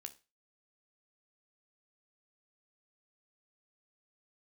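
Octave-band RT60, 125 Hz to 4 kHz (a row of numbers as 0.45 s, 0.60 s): 0.30 s, 0.25 s, 0.30 s, 0.30 s, 0.30 s, 0.30 s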